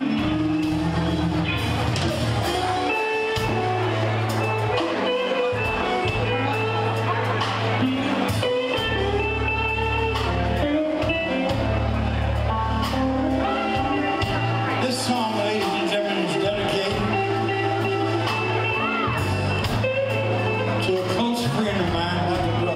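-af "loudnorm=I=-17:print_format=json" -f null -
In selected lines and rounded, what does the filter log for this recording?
"input_i" : "-22.8",
"input_tp" : "-9.5",
"input_lra" : "0.4",
"input_thresh" : "-32.8",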